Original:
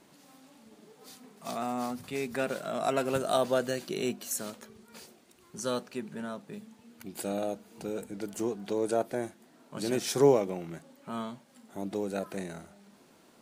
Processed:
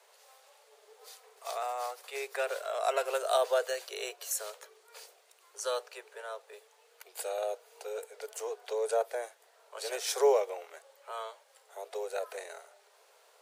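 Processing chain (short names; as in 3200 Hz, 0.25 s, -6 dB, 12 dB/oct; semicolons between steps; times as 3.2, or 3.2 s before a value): steep high-pass 420 Hz 96 dB/oct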